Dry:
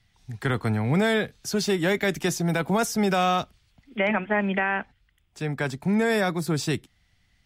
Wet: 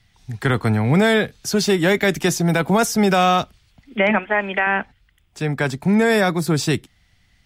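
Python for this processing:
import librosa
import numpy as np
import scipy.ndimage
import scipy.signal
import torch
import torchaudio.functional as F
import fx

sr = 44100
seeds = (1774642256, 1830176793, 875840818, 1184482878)

y = fx.peak_eq(x, sr, hz=160.0, db=-13.0, octaves=1.9, at=(4.19, 4.67))
y = F.gain(torch.from_numpy(y), 6.5).numpy()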